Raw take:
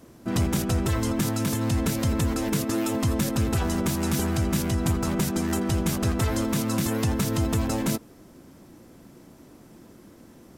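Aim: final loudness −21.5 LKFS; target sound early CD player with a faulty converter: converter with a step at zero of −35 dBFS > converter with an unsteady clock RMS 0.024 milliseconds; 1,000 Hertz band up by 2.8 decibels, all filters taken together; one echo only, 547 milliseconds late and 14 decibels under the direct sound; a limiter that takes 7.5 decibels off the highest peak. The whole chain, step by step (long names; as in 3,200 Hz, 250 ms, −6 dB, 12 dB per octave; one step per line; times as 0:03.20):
parametric band 1,000 Hz +3.5 dB
brickwall limiter −20 dBFS
single-tap delay 547 ms −14 dB
converter with a step at zero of −35 dBFS
converter with an unsteady clock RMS 0.024 ms
level +6 dB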